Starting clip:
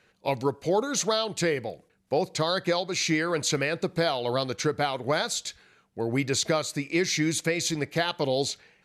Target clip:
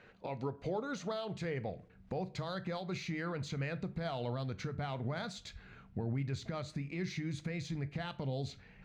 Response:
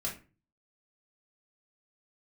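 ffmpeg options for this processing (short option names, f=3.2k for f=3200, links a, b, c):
-filter_complex "[0:a]asubboost=boost=5.5:cutoff=170,acompressor=threshold=-45dB:ratio=2.5,alimiter=level_in=9.5dB:limit=-24dB:level=0:latency=1:release=81,volume=-9.5dB,adynamicsmooth=sensitivity=2.5:basefreq=2.9k,asplit=2[a][b];[1:a]atrim=start_sample=2205,highshelf=f=5.1k:g=8[c];[b][c]afir=irnorm=-1:irlink=0,volume=-14dB[d];[a][d]amix=inputs=2:normalize=0,volume=4.5dB"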